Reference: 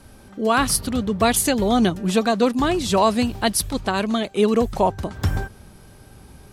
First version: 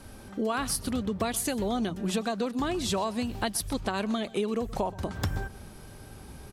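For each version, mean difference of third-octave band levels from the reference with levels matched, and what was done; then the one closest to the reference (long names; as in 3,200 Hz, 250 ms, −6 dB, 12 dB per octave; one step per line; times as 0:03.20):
4.5 dB: mains-hum notches 60/120/180 Hz
downward compressor 10 to 1, threshold −26 dBFS, peak gain reduction 14.5 dB
floating-point word with a short mantissa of 8 bits
single-tap delay 125 ms −20.5 dB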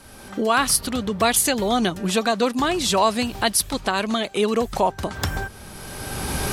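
6.0 dB: camcorder AGC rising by 22 dB per second
low-shelf EQ 490 Hz −8.5 dB
mains-hum notches 50/100 Hz
in parallel at −2 dB: downward compressor, threshold −29 dBFS, peak gain reduction 13.5 dB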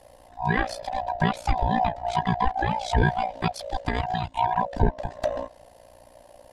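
9.0 dB: neighbouring bands swapped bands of 500 Hz
treble cut that deepens with the level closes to 2,900 Hz, closed at −15 dBFS
low-shelf EQ 110 Hz +11.5 dB
amplitude modulation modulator 59 Hz, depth 70%
level −3 dB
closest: first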